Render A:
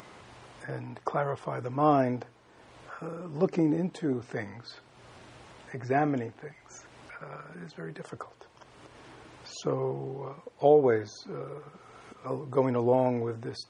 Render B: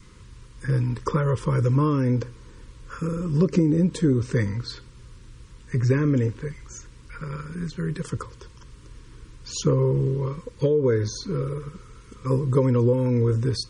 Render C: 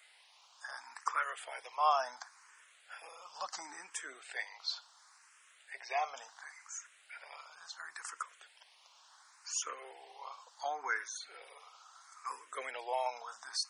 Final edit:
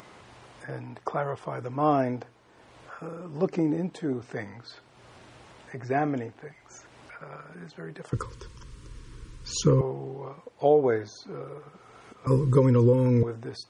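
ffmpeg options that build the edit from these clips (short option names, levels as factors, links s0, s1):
-filter_complex "[1:a]asplit=2[s0][s1];[0:a]asplit=3[s2][s3][s4];[s2]atrim=end=8.132[s5];[s0]atrim=start=8.128:end=9.812[s6];[s3]atrim=start=9.808:end=12.272[s7];[s1]atrim=start=12.268:end=13.232[s8];[s4]atrim=start=13.228[s9];[s5][s6]acrossfade=d=0.004:c1=hsin:c2=hsin[s10];[s10][s7]acrossfade=d=0.004:c1=hsin:c2=hsin[s11];[s11][s8]acrossfade=d=0.004:c1=hsin:c2=hsin[s12];[s12][s9]acrossfade=d=0.004:c1=hsin:c2=hsin"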